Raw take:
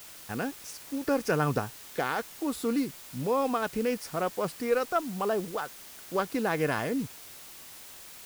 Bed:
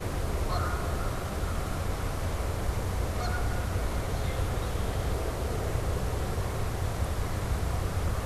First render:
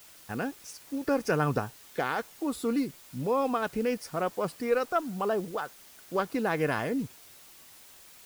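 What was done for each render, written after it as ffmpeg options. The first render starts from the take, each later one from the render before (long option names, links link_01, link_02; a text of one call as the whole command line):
ffmpeg -i in.wav -af "afftdn=noise_reduction=6:noise_floor=-47" out.wav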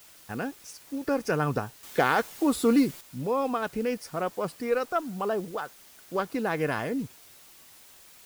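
ffmpeg -i in.wav -filter_complex "[0:a]asettb=1/sr,asplit=3[link_01][link_02][link_03];[link_01]atrim=end=1.834[link_04];[link_02]atrim=start=1.83:end=3.01,asetpts=PTS-STARTPTS,afade=type=in:duration=0.004:curve=qsin,afade=type=out:start_time=1.176:duration=0.004:curve=qsin,acontrast=85[link_05];[link_03]atrim=start=3.006[link_06];[link_04][link_05]acrossfade=duration=0.004:curve1=hsin:curve2=qsin[link_07];[link_07][link_06]acrossfade=duration=0.004:curve1=qsin:curve2=hsin" out.wav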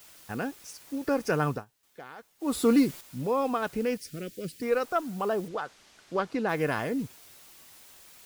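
ffmpeg -i in.wav -filter_complex "[0:a]asettb=1/sr,asplit=3[link_01][link_02][link_03];[link_01]atrim=end=3.974[link_04];[link_02]atrim=start=3.97:end=4.62,asetpts=PTS-STARTPTS,afade=type=in:duration=0.004:curve=qsin,afade=type=out:start_time=0.646:duration=0.004:curve=qsin,asuperstop=centerf=910:order=4:qfactor=0.5[link_05];[link_03]atrim=start=4.616[link_06];[link_04][link_05]acrossfade=duration=0.004:curve1=hsin:curve2=qsin[link_07];[link_07][link_06]acrossfade=duration=0.004:curve1=qsin:curve2=hsin,asettb=1/sr,asplit=3[link_08][link_09][link_10];[link_08]atrim=end=5.484[link_11];[link_09]atrim=start=5.48:end=6.49,asetpts=PTS-STARTPTS,afade=type=in:duration=0.004:curve=qsin,afade=type=out:start_time=1.006:duration=0.004:curve=qsin,lowpass=6000[link_12];[link_10]atrim=start=6.486[link_13];[link_11][link_12]acrossfade=duration=0.004:curve1=hsin:curve2=qsin[link_14];[link_14][link_13]acrossfade=duration=0.004:curve1=qsin:curve2=hsin,asplit=3[link_15][link_16][link_17];[link_15]atrim=end=1.65,asetpts=PTS-STARTPTS,afade=type=out:start_time=1.47:duration=0.18:silence=0.0794328[link_18];[link_16]atrim=start=1.65:end=2.39,asetpts=PTS-STARTPTS,volume=-22dB[link_19];[link_17]atrim=start=2.39,asetpts=PTS-STARTPTS,afade=type=in:duration=0.18:silence=0.0794328[link_20];[link_18][link_19][link_20]concat=n=3:v=0:a=1" out.wav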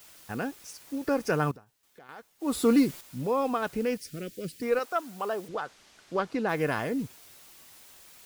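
ffmpeg -i in.wav -filter_complex "[0:a]asettb=1/sr,asplit=3[link_01][link_02][link_03];[link_01]atrim=end=1.514[link_04];[link_02]atrim=start=1.51:end=2.09,asetpts=PTS-STARTPTS,afade=type=in:duration=0.004:curve=qsin,afade=type=out:start_time=0.576:duration=0.004:curve=qsin,acompressor=threshold=-47dB:ratio=5:attack=3.2:release=140:knee=1:detection=peak[link_05];[link_03]atrim=start=2.086[link_06];[link_04][link_05]acrossfade=duration=0.004:curve1=hsin:curve2=qsin[link_07];[link_07][link_06]acrossfade=duration=0.004:curve1=qsin:curve2=hsin,asettb=1/sr,asplit=3[link_08][link_09][link_10];[link_08]atrim=end=4.794[link_11];[link_09]atrim=start=4.79:end=5.49,asetpts=PTS-STARTPTS,afade=type=in:duration=0.004:curve=qsin,afade=type=out:start_time=0.696:duration=0.004:curve=qsin,highpass=frequency=530:poles=1[link_12];[link_10]atrim=start=5.486[link_13];[link_11][link_12]acrossfade=duration=0.004:curve1=hsin:curve2=qsin[link_14];[link_14][link_13]acrossfade=duration=0.004:curve1=qsin:curve2=hsin" out.wav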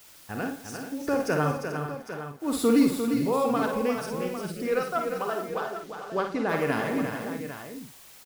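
ffmpeg -i in.wav -filter_complex "[0:a]asplit=2[link_01][link_02];[link_02]adelay=49,volume=-7dB[link_03];[link_01][link_03]amix=inputs=2:normalize=0,aecho=1:1:60|171|350|437|804:0.355|0.126|0.447|0.282|0.282" out.wav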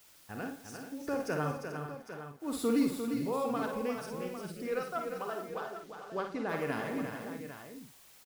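ffmpeg -i in.wav -af "volume=-8dB" out.wav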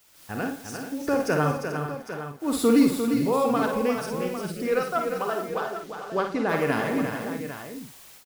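ffmpeg -i in.wav -af "dynaudnorm=framelen=120:gausssize=3:maxgain=10dB" out.wav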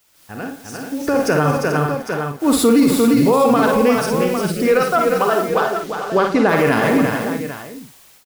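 ffmpeg -i in.wav -af "alimiter=limit=-17.5dB:level=0:latency=1:release=36,dynaudnorm=framelen=180:gausssize=11:maxgain=12dB" out.wav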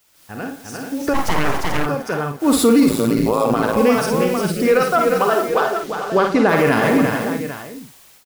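ffmpeg -i in.wav -filter_complex "[0:a]asplit=3[link_01][link_02][link_03];[link_01]afade=type=out:start_time=1.13:duration=0.02[link_04];[link_02]aeval=exprs='abs(val(0))':channel_layout=same,afade=type=in:start_time=1.13:duration=0.02,afade=type=out:start_time=1.85:duration=0.02[link_05];[link_03]afade=type=in:start_time=1.85:duration=0.02[link_06];[link_04][link_05][link_06]amix=inputs=3:normalize=0,asettb=1/sr,asplit=3[link_07][link_08][link_09];[link_07]atrim=end=2.894[link_10];[link_08]atrim=start=2.89:end=3.77,asetpts=PTS-STARTPTS,afade=type=in:duration=0.004:curve=qsin,afade=type=out:start_time=0.876:duration=0.004:curve=qsin,tremolo=f=110:d=0.889[link_11];[link_09]atrim=start=3.766[link_12];[link_10][link_11]acrossfade=duration=0.004:curve1=hsin:curve2=qsin[link_13];[link_13][link_12]acrossfade=duration=0.004:curve1=qsin:curve2=hsin,asettb=1/sr,asplit=3[link_14][link_15][link_16];[link_14]atrim=end=5.344[link_17];[link_15]atrim=start=5.34:end=5.88,asetpts=PTS-STARTPTS,afade=type=in:duration=0.004:curve=qsin,afade=type=out:start_time=0.536:duration=0.004:curve=qsin,equalizer=frequency=180:width=5.2:gain=-12.5[link_18];[link_16]atrim=start=5.876[link_19];[link_17][link_18]acrossfade=duration=0.004:curve1=hsin:curve2=qsin[link_20];[link_20][link_19]acrossfade=duration=0.004:curve1=qsin:curve2=hsin" out.wav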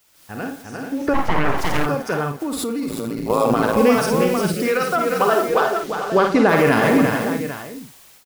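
ffmpeg -i in.wav -filter_complex "[0:a]asettb=1/sr,asplit=3[link_01][link_02][link_03];[link_01]atrim=end=0.624[link_04];[link_02]atrim=start=0.62:end=1.58,asetpts=PTS-STARTPTS,afade=type=in:duration=0.004:curve=qsin,afade=type=out:start_time=0.956:duration=0.004:curve=qsin,acrossover=split=3100[link_05][link_06];[link_06]acompressor=threshold=-45dB:ratio=4:attack=1:release=60[link_07];[link_05][link_07]amix=inputs=2:normalize=0[link_08];[link_03]atrim=start=1.576[link_09];[link_04][link_08]acrossfade=duration=0.004:curve1=hsin:curve2=qsin[link_10];[link_10][link_09]acrossfade=duration=0.004:curve1=qsin:curve2=hsin,asettb=1/sr,asplit=3[link_11][link_12][link_13];[link_11]atrim=end=2.364[link_14];[link_12]atrim=start=2.36:end=3.3,asetpts=PTS-STARTPTS,afade=type=in:duration=0.004:curve=qsin,afade=type=out:start_time=0.936:duration=0.004:curve=qsin,acompressor=threshold=-21dB:ratio=12:attack=3.2:release=140:knee=1:detection=peak[link_15];[link_13]atrim=start=3.296[link_16];[link_14][link_15]acrossfade=duration=0.004:curve1=hsin:curve2=qsin[link_17];[link_17][link_16]acrossfade=duration=0.004:curve1=qsin:curve2=hsin,asettb=1/sr,asplit=3[link_18][link_19][link_20];[link_18]atrim=end=4.534[link_21];[link_19]atrim=start=4.53:end=5.2,asetpts=PTS-STARTPTS,afade=type=in:duration=0.004:curve=qsin,afade=type=out:start_time=0.666:duration=0.004:curve=qsin,acrossover=split=100|480|1000[link_22][link_23][link_24][link_25];[link_22]acompressor=threshold=-60dB:ratio=3[link_26];[link_23]acompressor=threshold=-23dB:ratio=3[link_27];[link_24]acompressor=threshold=-28dB:ratio=3[link_28];[link_25]acompressor=threshold=-21dB:ratio=3[link_29];[link_26][link_27][link_28][link_29]amix=inputs=4:normalize=0[link_30];[link_20]atrim=start=5.196[link_31];[link_21][link_30]acrossfade=duration=0.004:curve1=hsin:curve2=qsin[link_32];[link_32][link_31]acrossfade=duration=0.004:curve1=qsin:curve2=hsin" out.wav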